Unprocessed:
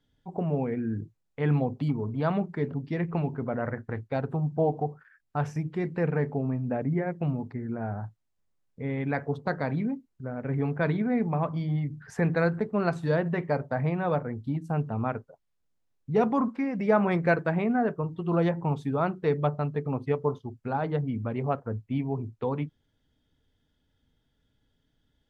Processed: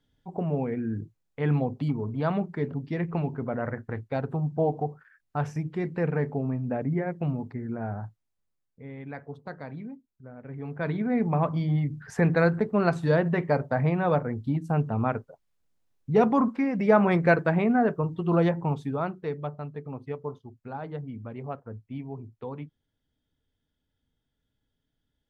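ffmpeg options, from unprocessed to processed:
ffmpeg -i in.wav -af "volume=13dB,afade=type=out:start_time=7.94:duration=0.9:silence=0.316228,afade=type=in:start_time=10.6:duration=0.77:silence=0.223872,afade=type=out:start_time=18.28:duration=1.08:silence=0.298538" out.wav

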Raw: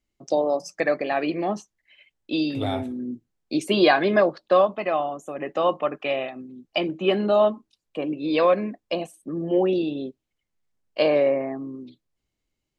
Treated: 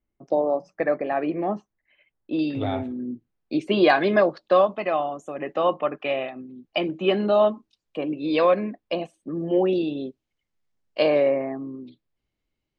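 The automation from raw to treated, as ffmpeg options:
ffmpeg -i in.wav -af "asetnsamples=nb_out_samples=441:pad=0,asendcmd='2.39 lowpass f 3000;3.9 lowpass f 6900;5.54 lowpass f 3800;6.87 lowpass f 6100;8.59 lowpass f 3900;9.35 lowpass f 6500;11.4 lowpass f 4100',lowpass=1600" out.wav

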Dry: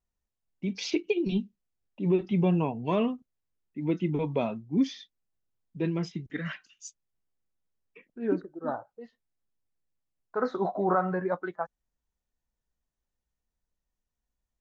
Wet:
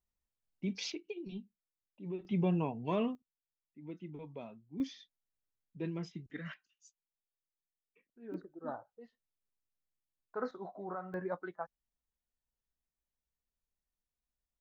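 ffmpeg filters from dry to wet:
ffmpeg -i in.wav -af "asetnsamples=nb_out_samples=441:pad=0,asendcmd='0.92 volume volume -16dB;2.25 volume volume -6.5dB;3.15 volume volume -18dB;4.8 volume volume -9.5dB;6.54 volume volume -18.5dB;8.34 volume volume -9dB;10.51 volume volume -16.5dB;11.14 volume volume -8.5dB',volume=-5dB" out.wav

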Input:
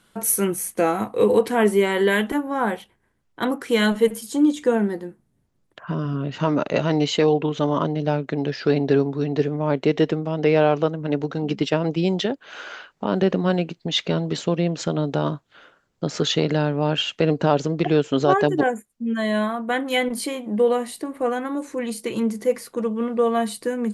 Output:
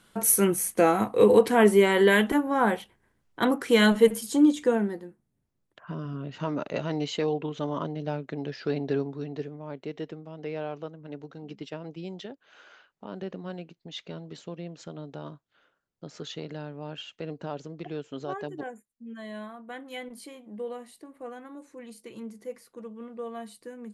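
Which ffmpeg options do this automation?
ffmpeg -i in.wav -af "volume=-0.5dB,afade=type=out:start_time=4.3:duration=0.77:silence=0.354813,afade=type=out:start_time=9.03:duration=0.59:silence=0.421697" out.wav

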